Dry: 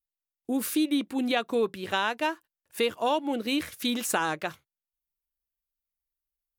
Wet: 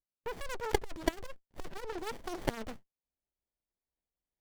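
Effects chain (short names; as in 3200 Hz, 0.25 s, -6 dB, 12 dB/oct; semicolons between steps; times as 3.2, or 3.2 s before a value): speed glide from 190% -> 109%; added harmonics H 2 -17 dB, 3 -24 dB, 4 -9 dB, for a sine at -11 dBFS; running maximum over 33 samples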